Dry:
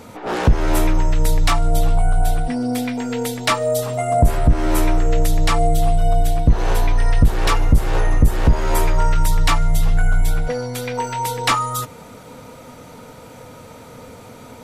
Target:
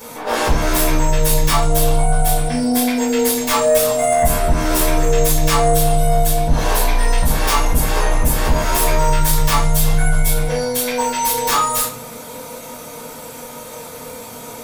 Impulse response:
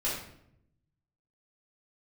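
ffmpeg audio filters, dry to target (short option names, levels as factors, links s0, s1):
-filter_complex "[0:a]aemphasis=mode=production:type=bsi,aeval=exprs='1*sin(PI/2*5.01*val(0)/1)':c=same[s0];[1:a]atrim=start_sample=2205,asetrate=79380,aresample=44100[s1];[s0][s1]afir=irnorm=-1:irlink=0,volume=0.2"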